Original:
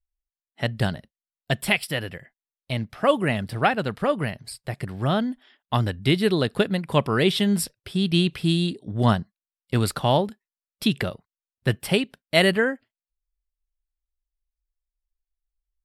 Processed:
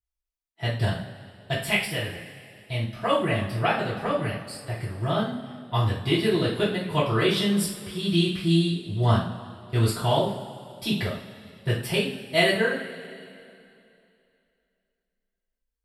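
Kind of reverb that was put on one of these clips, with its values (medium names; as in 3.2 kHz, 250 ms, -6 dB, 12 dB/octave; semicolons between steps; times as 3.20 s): two-slope reverb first 0.43 s, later 2.7 s, from -18 dB, DRR -9 dB; trim -11 dB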